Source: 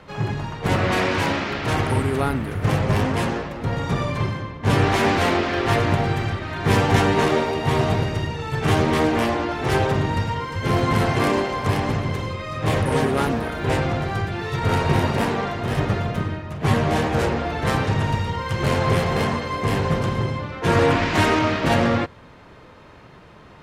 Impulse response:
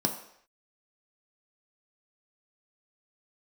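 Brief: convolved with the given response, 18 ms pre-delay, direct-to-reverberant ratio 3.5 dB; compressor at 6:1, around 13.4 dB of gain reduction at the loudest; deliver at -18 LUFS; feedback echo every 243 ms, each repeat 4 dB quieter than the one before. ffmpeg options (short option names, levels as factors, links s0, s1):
-filter_complex "[0:a]acompressor=threshold=0.0355:ratio=6,aecho=1:1:243|486|729|972|1215|1458|1701|1944|2187:0.631|0.398|0.25|0.158|0.0994|0.0626|0.0394|0.0249|0.0157,asplit=2[s0][s1];[1:a]atrim=start_sample=2205,adelay=18[s2];[s1][s2]afir=irnorm=-1:irlink=0,volume=0.282[s3];[s0][s3]amix=inputs=2:normalize=0,volume=2.66"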